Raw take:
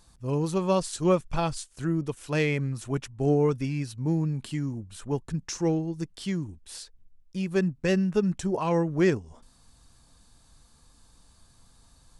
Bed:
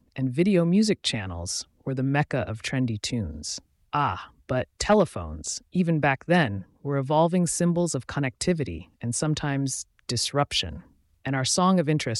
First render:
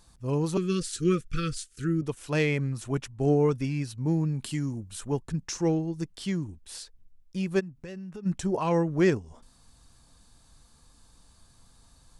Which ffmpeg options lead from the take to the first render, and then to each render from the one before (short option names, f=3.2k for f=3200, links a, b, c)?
-filter_complex "[0:a]asettb=1/sr,asplit=3[a][b][c];[a]atrim=end=0.574[d];[b]atrim=start=0.57:end=2.02,asetpts=PTS-STARTPTS,afade=t=in:d=0.004:c=qsin,afade=t=out:st=1.446:d=0.004:c=qsin,asuperstop=centerf=770:order=20:qfactor=1.1[e];[c]atrim=start=2.016[f];[d][e]acrossfade=d=0.004:c1=hsin:c2=qsin[g];[g][f]acrossfade=d=0.004:c1=qsin:c2=hsin,asettb=1/sr,asplit=3[h][i][j];[h]atrim=end=4.414[k];[i]atrim=start=4.41:end=5.11,asetpts=PTS-STARTPTS,afade=t=in:d=0.004:c=qsin,afade=t=out:st=0.696:d=0.004:c=qsin,highshelf=f=4.5k:g=7.5[l];[j]atrim=start=5.106[m];[k][l]acrossfade=d=0.004:c1=hsin:c2=qsin[n];[n][m]acrossfade=d=0.004:c1=qsin:c2=hsin,asplit=3[o][p][q];[o]afade=t=out:st=7.59:d=0.02[r];[p]acompressor=threshold=-39dB:ratio=5:attack=3.2:release=140:knee=1:detection=peak,afade=t=in:st=7.59:d=0.02,afade=t=out:st=8.25:d=0.02[s];[q]afade=t=in:st=8.25:d=0.02[t];[r][s][t]amix=inputs=3:normalize=0"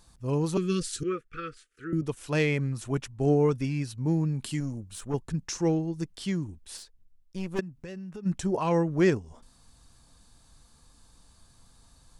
-filter_complex "[0:a]asettb=1/sr,asplit=3[a][b][c];[a]atrim=end=1.034[d];[b]atrim=start=1.03:end=1.93,asetpts=PTS-STARTPTS,afade=t=in:d=0.004:c=qsin,afade=t=out:st=0.896:d=0.004:c=qsin,acrossover=split=360 2300:gain=0.126 1 0.0891[e][f][g];[e][f][g]amix=inputs=3:normalize=0[h];[c]atrim=start=1.926[i];[d][h]acrossfade=d=0.004:c1=hsin:c2=qsin[j];[j][i]acrossfade=d=0.004:c1=qsin:c2=hsin,asettb=1/sr,asplit=3[k][l][m];[k]atrim=end=4.604[n];[l]atrim=start=4.6:end=5.14,asetpts=PTS-STARTPTS,afade=t=in:d=0.004:c=qsin,afade=t=out:st=0.536:d=0.004:c=qsin,aeval=exprs='(tanh(15.8*val(0)+0.45)-tanh(0.45))/15.8':c=same[o];[m]atrim=start=5.136[p];[n][o]acrossfade=d=0.004:c1=hsin:c2=qsin[q];[q][p]acrossfade=d=0.004:c1=qsin:c2=hsin,asettb=1/sr,asplit=3[r][s][t];[r]atrim=end=6.774[u];[s]atrim=start=6.77:end=7.59,asetpts=PTS-STARTPTS,afade=t=in:d=0.004:c=qsin,afade=t=out:st=0.816:d=0.004:c=qsin,aeval=exprs='(tanh(25.1*val(0)+0.75)-tanh(0.75))/25.1':c=same[v];[t]atrim=start=7.586[w];[u][v]acrossfade=d=0.004:c1=hsin:c2=qsin[x];[x][w]acrossfade=d=0.004:c1=qsin:c2=hsin"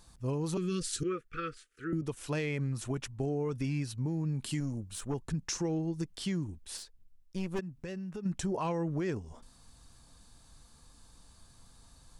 -af "alimiter=limit=-22dB:level=0:latency=1:release=60,acompressor=threshold=-29dB:ratio=6"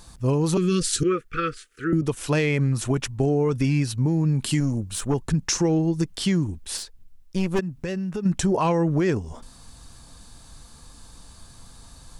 -af "volume=11.5dB"